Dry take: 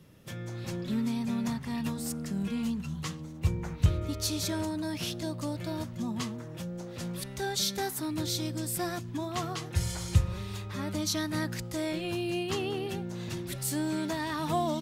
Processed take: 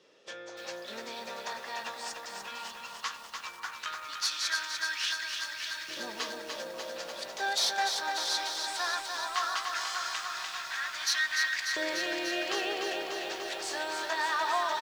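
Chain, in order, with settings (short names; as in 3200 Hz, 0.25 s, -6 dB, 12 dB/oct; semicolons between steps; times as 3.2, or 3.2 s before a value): dynamic EQ 1600 Hz, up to +7 dB, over -55 dBFS, Q 2.9; LPF 5900 Hz 24 dB/oct; tilt +2.5 dB/oct; tube stage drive 20 dB, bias 0.5; HPF 48 Hz; notch 2100 Hz, Q 27; doubler 15 ms -13 dB; analogue delay 0.537 s, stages 4096, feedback 76%, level -12 dB; LFO high-pass saw up 0.17 Hz 430–2100 Hz; lo-fi delay 0.295 s, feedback 80%, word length 9-bit, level -5 dB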